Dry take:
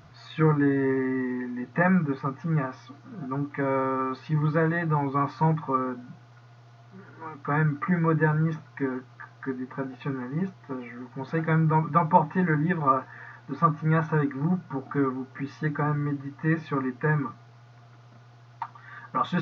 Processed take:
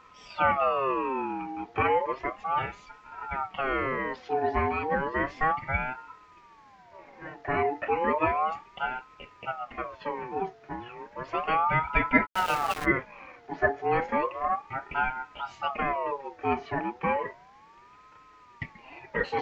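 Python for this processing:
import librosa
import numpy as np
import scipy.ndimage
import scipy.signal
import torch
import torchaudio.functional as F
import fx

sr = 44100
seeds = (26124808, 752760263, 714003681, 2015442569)

y = fx.sample_gate(x, sr, floor_db=-26.5, at=(12.25, 12.84), fade=0.02)
y = fx.ring_lfo(y, sr, carrier_hz=860.0, swing_pct=35, hz=0.33)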